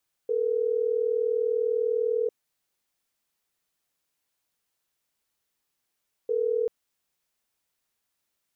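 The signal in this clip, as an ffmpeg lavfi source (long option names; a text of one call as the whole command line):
ffmpeg -f lavfi -i "aevalsrc='0.0531*(sin(2*PI*440*t)+sin(2*PI*480*t))*clip(min(mod(t,6),2-mod(t,6))/0.005,0,1)':duration=6.39:sample_rate=44100" out.wav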